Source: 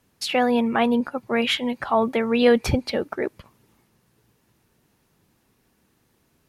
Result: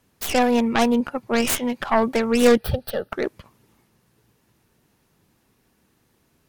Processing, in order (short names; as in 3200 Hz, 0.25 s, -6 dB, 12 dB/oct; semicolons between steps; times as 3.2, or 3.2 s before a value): tracing distortion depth 0.4 ms; 2.57–3.12 fixed phaser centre 1500 Hz, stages 8; gain +1 dB